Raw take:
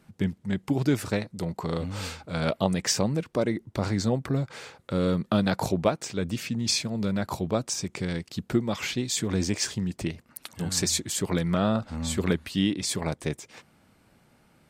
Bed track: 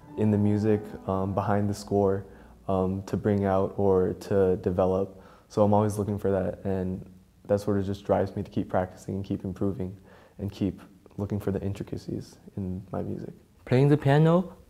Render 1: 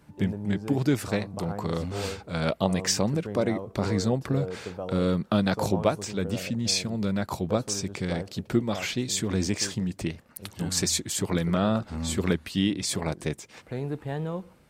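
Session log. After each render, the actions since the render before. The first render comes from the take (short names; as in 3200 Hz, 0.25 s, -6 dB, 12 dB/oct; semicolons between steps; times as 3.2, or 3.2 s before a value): add bed track -11.5 dB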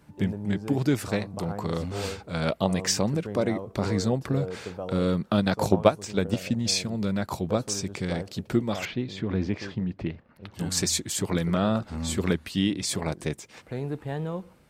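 5.37–6.66 transient shaper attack +7 dB, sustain -5 dB; 8.85–10.54 air absorption 330 m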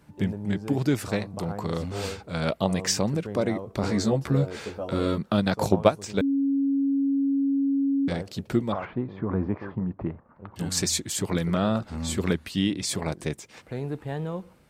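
3.82–5.18 doubler 14 ms -3.5 dB; 6.21–8.08 bleep 276 Hz -20.5 dBFS; 8.72–10.56 synth low-pass 1100 Hz, resonance Q 2.4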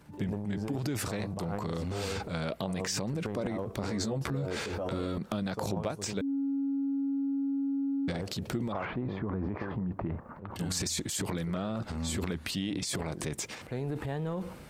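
transient shaper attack -2 dB, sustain +11 dB; compressor, threshold -30 dBFS, peak gain reduction 15.5 dB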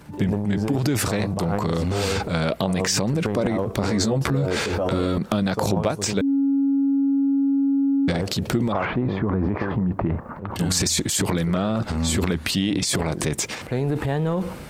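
gain +11 dB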